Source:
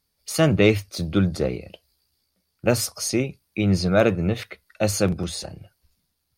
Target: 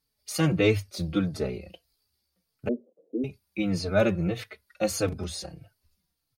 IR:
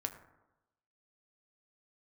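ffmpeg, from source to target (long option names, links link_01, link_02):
-filter_complex "[0:a]asettb=1/sr,asplit=3[link_01][link_02][link_03];[link_01]atrim=end=2.684[link_04];[link_02]atrim=start=2.68:end=3.24,asetpts=PTS-STARTPTS,afade=type=in:duration=0.004:curve=qsin,afade=type=out:start_time=0.556:duration=0.004:curve=qsin,asuperpass=centerf=340:order=8:qfactor=1.2[link_05];[link_03]atrim=start=3.236[link_06];[link_04][link_05]acrossfade=duration=0.004:curve1=hsin:curve2=qsin[link_07];[link_07][link_06]acrossfade=duration=0.004:curve1=qsin:curve2=hsin,asplit=2[link_08][link_09];[link_09]adelay=4,afreqshift=-1.6[link_10];[link_08][link_10]amix=inputs=2:normalize=1,volume=-2dB"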